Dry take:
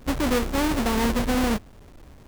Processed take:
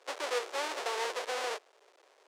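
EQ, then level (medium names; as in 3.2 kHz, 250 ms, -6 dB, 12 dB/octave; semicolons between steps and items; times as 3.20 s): steep high-pass 400 Hz 48 dB/octave; distance through air 81 m; treble shelf 4.2 kHz +9 dB; -7.5 dB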